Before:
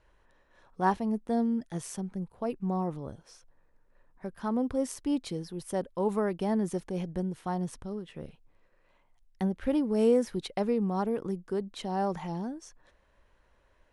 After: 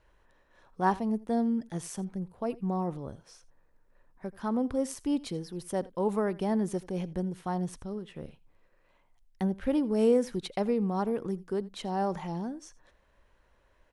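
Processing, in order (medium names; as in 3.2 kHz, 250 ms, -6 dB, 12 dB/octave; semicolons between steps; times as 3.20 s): delay 83 ms -21 dB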